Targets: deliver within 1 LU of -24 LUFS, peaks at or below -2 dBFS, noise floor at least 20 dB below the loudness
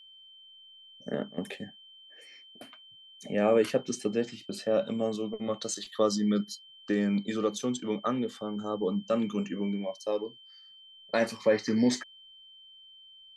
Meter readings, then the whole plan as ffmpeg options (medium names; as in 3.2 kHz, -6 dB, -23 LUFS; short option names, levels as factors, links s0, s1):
steady tone 3.1 kHz; tone level -51 dBFS; loudness -30.5 LUFS; peak level -13.0 dBFS; loudness target -24.0 LUFS
-> -af "bandreject=f=3100:w=30"
-af "volume=2.11"